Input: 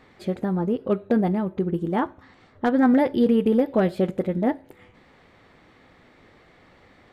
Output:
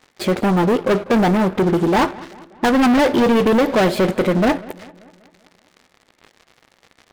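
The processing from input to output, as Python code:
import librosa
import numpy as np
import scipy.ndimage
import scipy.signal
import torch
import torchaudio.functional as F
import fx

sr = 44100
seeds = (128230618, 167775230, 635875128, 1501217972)

y = fx.low_shelf(x, sr, hz=200.0, db=-12.0)
y = fx.leveller(y, sr, passes=5)
y = fx.echo_filtered(y, sr, ms=194, feedback_pct=54, hz=4100.0, wet_db=-20.5)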